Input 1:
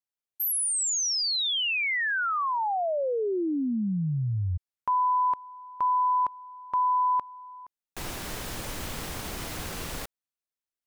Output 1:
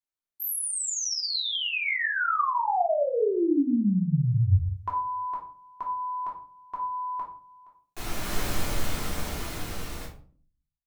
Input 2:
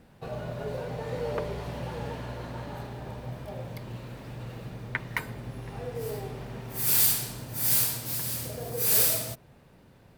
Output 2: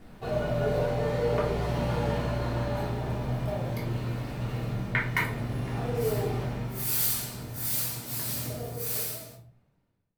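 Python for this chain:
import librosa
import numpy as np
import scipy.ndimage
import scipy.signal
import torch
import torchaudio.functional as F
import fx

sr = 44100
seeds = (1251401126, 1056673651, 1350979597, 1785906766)

y = fx.fade_out_tail(x, sr, length_s=2.83)
y = fx.rider(y, sr, range_db=5, speed_s=0.5)
y = fx.room_shoebox(y, sr, seeds[0], volume_m3=360.0, walls='furnished', distance_m=3.3)
y = y * librosa.db_to_amplitude(-4.5)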